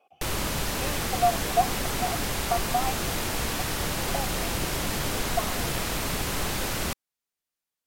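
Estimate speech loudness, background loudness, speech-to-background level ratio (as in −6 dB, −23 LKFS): −31.5 LKFS, −28.5 LKFS, −3.0 dB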